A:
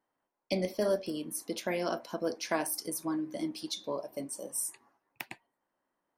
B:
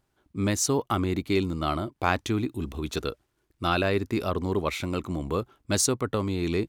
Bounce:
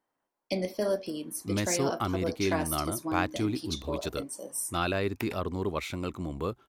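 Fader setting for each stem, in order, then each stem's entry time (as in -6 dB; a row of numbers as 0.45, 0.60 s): +0.5, -4.5 dB; 0.00, 1.10 s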